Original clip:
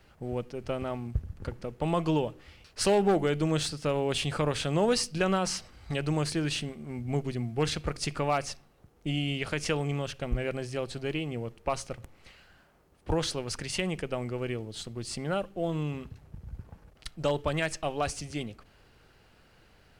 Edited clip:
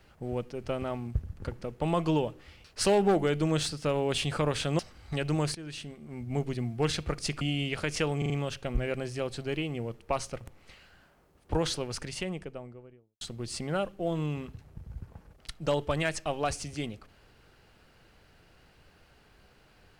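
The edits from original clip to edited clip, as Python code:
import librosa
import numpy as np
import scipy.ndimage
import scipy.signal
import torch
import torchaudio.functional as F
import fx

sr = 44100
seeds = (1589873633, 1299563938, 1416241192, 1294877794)

y = fx.studio_fade_out(x, sr, start_s=13.28, length_s=1.5)
y = fx.edit(y, sr, fx.cut(start_s=4.79, length_s=0.78),
    fx.fade_in_from(start_s=6.33, length_s=0.94, floor_db=-15.5),
    fx.cut(start_s=8.19, length_s=0.91),
    fx.stutter(start_s=9.87, slice_s=0.04, count=4), tone=tone)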